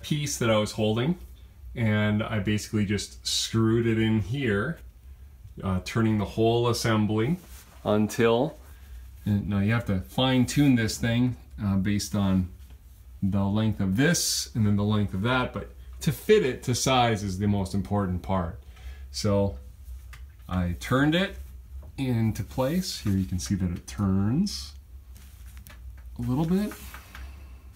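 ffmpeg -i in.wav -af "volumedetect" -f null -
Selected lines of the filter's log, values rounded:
mean_volume: -26.5 dB
max_volume: -8.5 dB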